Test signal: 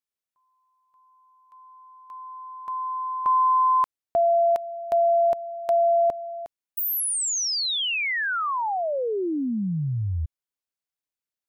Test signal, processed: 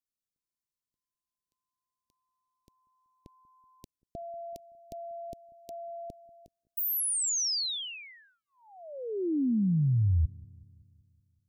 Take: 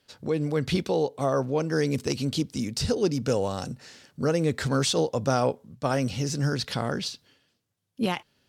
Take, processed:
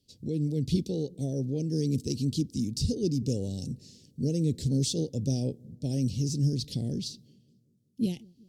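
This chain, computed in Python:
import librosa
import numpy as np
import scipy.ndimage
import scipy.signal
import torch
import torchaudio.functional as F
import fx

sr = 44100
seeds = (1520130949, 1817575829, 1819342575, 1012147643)

y = scipy.signal.sosfilt(scipy.signal.cheby1(2, 1.0, [310.0, 4700.0], 'bandstop', fs=sr, output='sos'), x)
y = fx.low_shelf(y, sr, hz=190.0, db=7.5)
y = fx.echo_wet_lowpass(y, sr, ms=189, feedback_pct=57, hz=440.0, wet_db=-24.0)
y = F.gain(torch.from_numpy(y), -3.5).numpy()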